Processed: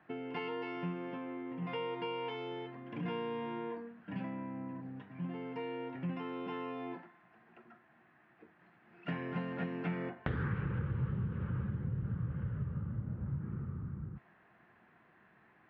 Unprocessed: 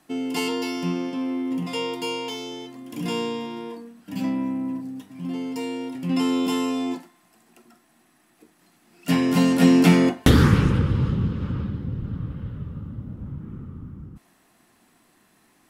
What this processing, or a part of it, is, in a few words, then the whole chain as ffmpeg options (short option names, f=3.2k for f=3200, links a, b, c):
bass amplifier: -af "acompressor=threshold=-30dB:ratio=6,highpass=60,equalizer=f=130:t=q:w=4:g=4,equalizer=f=270:t=q:w=4:g=-10,equalizer=f=1.6k:t=q:w=4:g=6,lowpass=f=2.4k:w=0.5412,lowpass=f=2.4k:w=1.3066,volume=-3dB"